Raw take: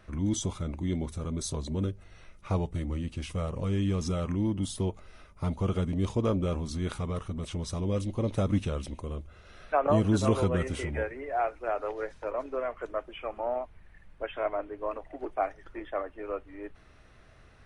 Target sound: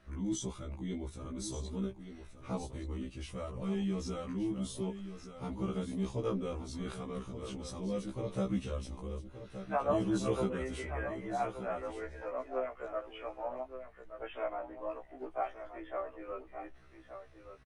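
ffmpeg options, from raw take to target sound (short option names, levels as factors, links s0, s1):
-af "aecho=1:1:1174:0.299,afftfilt=real='re*1.73*eq(mod(b,3),0)':imag='im*1.73*eq(mod(b,3),0)':win_size=2048:overlap=0.75,volume=0.631"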